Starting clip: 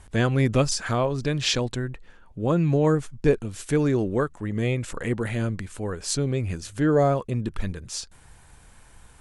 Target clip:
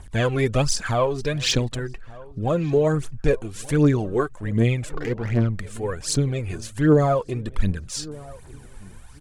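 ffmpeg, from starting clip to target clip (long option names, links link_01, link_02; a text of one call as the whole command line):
ffmpeg -i in.wav -filter_complex "[0:a]asplit=3[link_01][link_02][link_03];[link_01]afade=type=out:start_time=4.88:duration=0.02[link_04];[link_02]adynamicsmooth=sensitivity=3:basefreq=950,afade=type=in:start_time=4.88:duration=0.02,afade=type=out:start_time=5.53:duration=0.02[link_05];[link_03]afade=type=in:start_time=5.53:duration=0.02[link_06];[link_04][link_05][link_06]amix=inputs=3:normalize=0,aphaser=in_gain=1:out_gain=1:delay=2.9:decay=0.61:speed=1.3:type=triangular,asplit=2[link_07][link_08];[link_08]adelay=1178,lowpass=frequency=1300:poles=1,volume=-20.5dB,asplit=2[link_09][link_10];[link_10]adelay=1178,lowpass=frequency=1300:poles=1,volume=0.5,asplit=2[link_11][link_12];[link_12]adelay=1178,lowpass=frequency=1300:poles=1,volume=0.5,asplit=2[link_13][link_14];[link_14]adelay=1178,lowpass=frequency=1300:poles=1,volume=0.5[link_15];[link_07][link_09][link_11][link_13][link_15]amix=inputs=5:normalize=0" out.wav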